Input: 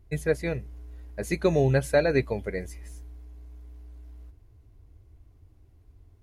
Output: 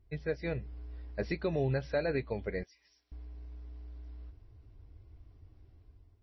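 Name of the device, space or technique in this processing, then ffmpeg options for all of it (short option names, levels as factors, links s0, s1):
low-bitrate web radio: -filter_complex "[0:a]asettb=1/sr,asplit=3[s0][s1][s2];[s0]atrim=end=2.634[s3];[s1]atrim=start=2.63:end=3.12,asetpts=PTS-STARTPTS,afade=t=in:d=0.004:c=qsin,afade=t=out:st=0.486:d=0.004:c=qsin,aderivative[s4];[s2]atrim=start=3.116[s5];[s3][s4]acrossfade=d=0.004:c1=hsin:c2=qsin[s6];[s6][s5]acrossfade=d=0.004:c1=qsin:c2=hsin,dynaudnorm=f=140:g=7:m=2.51,alimiter=limit=0.211:level=0:latency=1:release=332,volume=0.376" -ar 22050 -c:a libmp3lame -b:a 24k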